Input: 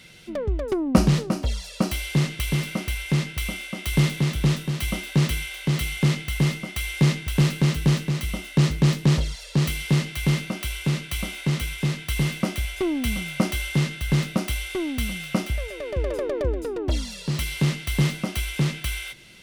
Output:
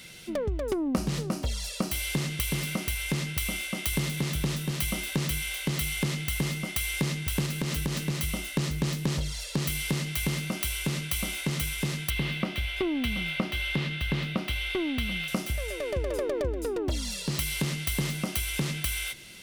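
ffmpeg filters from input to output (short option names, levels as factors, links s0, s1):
-filter_complex "[0:a]asettb=1/sr,asplit=3[s0][s1][s2];[s0]atrim=end=7.464[s3];[s1]atrim=start=7.46:end=7.97,asetpts=PTS-STARTPTS,afade=t=in:d=0.004:c=qsin,afade=t=out:st=0.506:d=0.004:c=qsin,acompressor=threshold=0.0891:ratio=6:attack=3.2:release=140:knee=1:detection=peak[s4];[s2]atrim=start=7.966[s5];[s3][s4]acrossfade=d=0.004:c1=hsin:c2=qsin[s6];[s6][s5]acrossfade=d=0.004:c1=qsin:c2=hsin,asettb=1/sr,asplit=3[s7][s8][s9];[s7]atrim=end=12.104[s10];[s8]atrim=start=12.1:end=15.28,asetpts=PTS-STARTPTS,afade=t=in:d=0.004:c=qsin,afade=t=out:st=3.176:d=0.004:c=qsin,highshelf=f=4900:t=q:w=1.5:g=-13[s11];[s9]atrim=start=15.276[s12];[s10][s11]acrossfade=d=0.004:c1=hsin:c2=qsin[s13];[s13][s12]acrossfade=d=0.004:c1=qsin:c2=hsin,highshelf=f=6400:g=9,bandreject=f=50:t=h:w=6,bandreject=f=100:t=h:w=6,bandreject=f=150:t=h:w=6,acompressor=threshold=0.0501:ratio=4"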